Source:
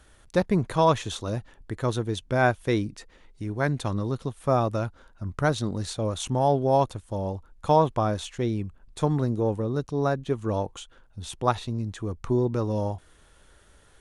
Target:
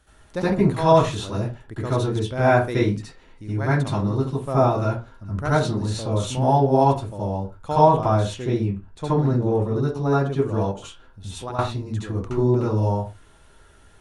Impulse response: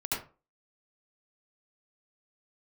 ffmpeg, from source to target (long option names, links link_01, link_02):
-filter_complex "[0:a]asettb=1/sr,asplit=3[link_01][link_02][link_03];[link_01]atrim=end=8.594[link_04];[link_02]atrim=start=8.59:end=9.47,asetpts=PTS-STARTPTS,afade=type=in:duration=0.004:curve=qsin,afade=type=out:start_time=0.876:duration=0.004:curve=qsin,highshelf=frequency=9700:gain=-11.5[link_05];[link_03]atrim=start=9.466[link_06];[link_04][link_05]acrossfade=duration=0.004:curve1=hsin:curve2=qsin[link_07];[link_07][link_06]acrossfade=duration=0.004:curve1=qsin:curve2=hsin[link_08];[1:a]atrim=start_sample=2205,afade=type=out:start_time=0.27:duration=0.01,atrim=end_sample=12348[link_09];[link_08][link_09]afir=irnorm=-1:irlink=0,asettb=1/sr,asplit=3[link_10][link_11][link_12];[link_10]atrim=end=10.714[link_13];[link_11]atrim=start=10.71:end=11.59,asetpts=PTS-STARTPTS,afade=type=in:duration=0.004:curve=qsin,afade=type=out:start_time=0.876:duration=0.004:curve=qsin,acompressor=threshold=-27dB:ratio=6[link_14];[link_12]atrim=start=11.586[link_15];[link_13][link_14]acrossfade=duration=0.004:curve1=hsin:curve2=qsin[link_16];[link_16][link_15]acrossfade=duration=0.004:curve1=qsin:curve2=hsin,volume=-2dB"